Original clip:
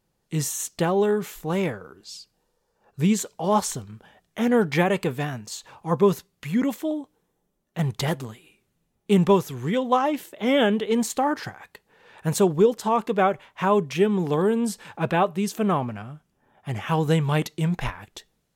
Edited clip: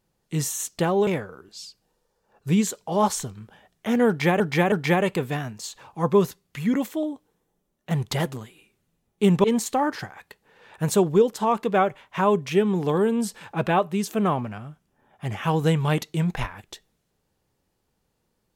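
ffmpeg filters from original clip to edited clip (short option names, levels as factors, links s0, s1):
-filter_complex "[0:a]asplit=5[s0][s1][s2][s3][s4];[s0]atrim=end=1.072[s5];[s1]atrim=start=1.588:end=4.922[s6];[s2]atrim=start=4.598:end=4.922[s7];[s3]atrim=start=4.598:end=9.322[s8];[s4]atrim=start=10.878[s9];[s5][s6]acrossfade=d=0.004:c1=hsin:c2=hsin[s10];[s10][s7]acrossfade=d=0.004:c1=hsin:c2=hsin[s11];[s11][s8]acrossfade=d=0.004:c1=hsin:c2=hsin[s12];[s12][s9]acrossfade=d=0.004:c1=hsin:c2=hsin"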